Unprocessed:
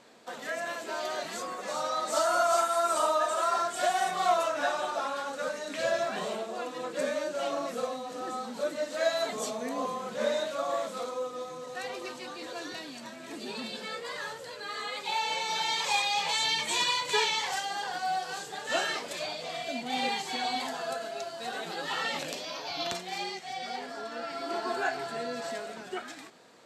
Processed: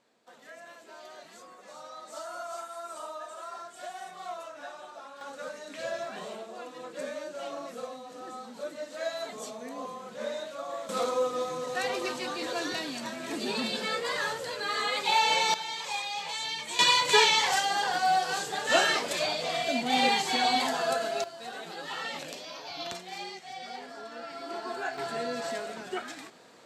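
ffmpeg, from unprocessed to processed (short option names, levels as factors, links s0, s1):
-af "asetnsamples=n=441:p=0,asendcmd='5.21 volume volume -6dB;10.89 volume volume 6.5dB;15.54 volume volume -6dB;16.79 volume volume 6dB;21.24 volume volume -4dB;24.98 volume volume 2dB',volume=0.211"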